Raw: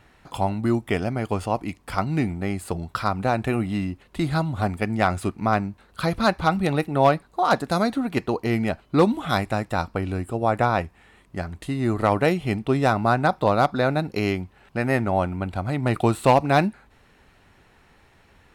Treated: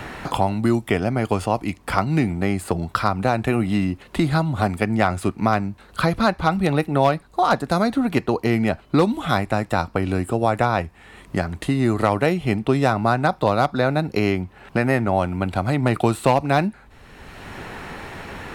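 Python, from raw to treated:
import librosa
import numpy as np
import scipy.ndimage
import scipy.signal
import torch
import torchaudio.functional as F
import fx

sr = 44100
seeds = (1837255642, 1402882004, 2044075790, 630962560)

y = fx.band_squash(x, sr, depth_pct=70)
y = y * 10.0 ** (2.0 / 20.0)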